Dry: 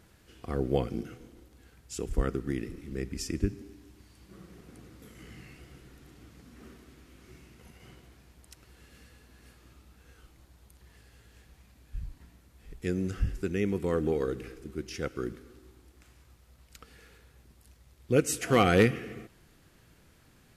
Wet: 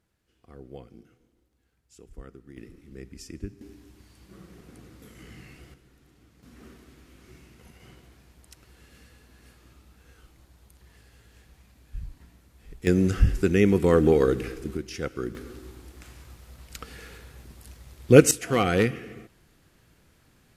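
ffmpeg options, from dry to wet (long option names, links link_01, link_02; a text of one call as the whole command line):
ffmpeg -i in.wav -af "asetnsamples=nb_out_samples=441:pad=0,asendcmd='2.57 volume volume -7.5dB;3.61 volume volume 2dB;5.74 volume volume -6dB;6.43 volume volume 1.5dB;12.87 volume volume 9.5dB;14.77 volume volume 2.5dB;15.35 volume volume 11dB;18.31 volume volume -0.5dB',volume=-15.5dB" out.wav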